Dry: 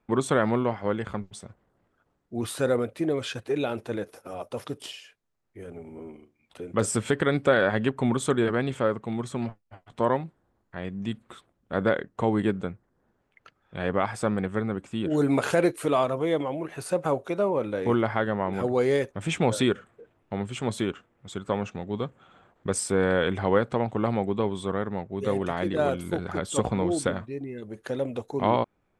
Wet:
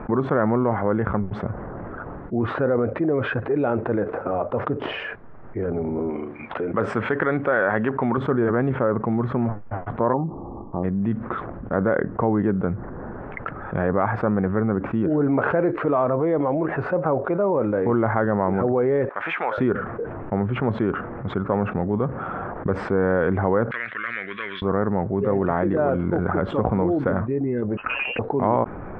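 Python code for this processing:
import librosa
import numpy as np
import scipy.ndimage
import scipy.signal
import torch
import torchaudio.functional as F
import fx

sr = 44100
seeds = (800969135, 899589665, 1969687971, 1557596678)

y = fx.tilt_eq(x, sr, slope=3.0, at=(6.1, 8.18))
y = fx.cheby_ripple(y, sr, hz=1200.0, ripple_db=6, at=(10.12, 10.83), fade=0.02)
y = fx.highpass(y, sr, hz=1300.0, slope=12, at=(19.09, 19.58))
y = fx.ellip_bandpass(y, sr, low_hz=1700.0, high_hz=5100.0, order=3, stop_db=40, at=(23.71, 24.62))
y = fx.freq_invert(y, sr, carrier_hz=3000, at=(27.77, 28.19))
y = scipy.signal.sosfilt(scipy.signal.butter(4, 1600.0, 'lowpass', fs=sr, output='sos'), y)
y = fx.env_flatten(y, sr, amount_pct=70)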